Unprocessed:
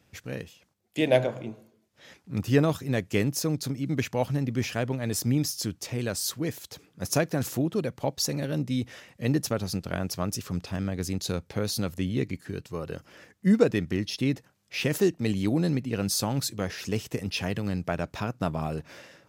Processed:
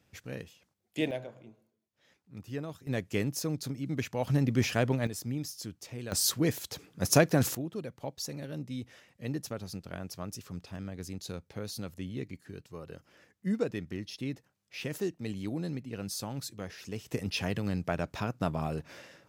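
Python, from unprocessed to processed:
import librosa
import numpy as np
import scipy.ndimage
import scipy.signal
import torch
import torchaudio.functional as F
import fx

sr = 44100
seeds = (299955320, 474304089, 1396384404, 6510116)

y = fx.gain(x, sr, db=fx.steps((0.0, -5.0), (1.11, -16.0), (2.87, -5.5), (4.27, 1.0), (5.07, -10.0), (6.12, 2.5), (7.55, -10.0), (17.08, -2.5)))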